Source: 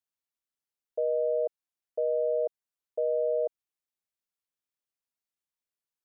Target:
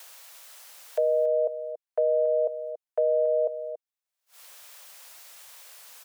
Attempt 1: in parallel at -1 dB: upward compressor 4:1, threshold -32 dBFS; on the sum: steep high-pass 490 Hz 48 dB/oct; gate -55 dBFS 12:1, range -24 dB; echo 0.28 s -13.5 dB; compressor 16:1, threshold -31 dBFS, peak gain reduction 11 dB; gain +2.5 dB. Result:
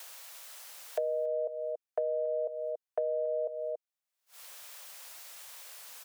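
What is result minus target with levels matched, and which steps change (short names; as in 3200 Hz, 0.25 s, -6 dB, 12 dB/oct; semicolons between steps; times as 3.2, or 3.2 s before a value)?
compressor: peak gain reduction +8.5 dB
change: compressor 16:1, threshold -21.5 dBFS, peak gain reduction 2.5 dB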